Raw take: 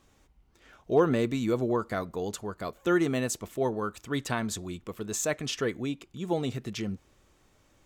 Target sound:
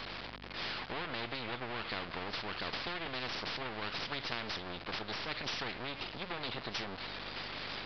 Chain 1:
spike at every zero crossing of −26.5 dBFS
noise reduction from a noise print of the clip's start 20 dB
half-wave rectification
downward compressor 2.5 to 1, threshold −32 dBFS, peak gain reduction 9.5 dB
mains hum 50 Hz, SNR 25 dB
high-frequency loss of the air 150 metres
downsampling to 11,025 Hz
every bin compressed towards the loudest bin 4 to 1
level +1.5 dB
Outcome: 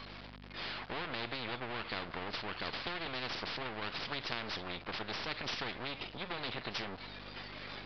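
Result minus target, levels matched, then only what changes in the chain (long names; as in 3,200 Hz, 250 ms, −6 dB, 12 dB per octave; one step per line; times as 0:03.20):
spike at every zero crossing: distortion −7 dB
change: spike at every zero crossing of −19.5 dBFS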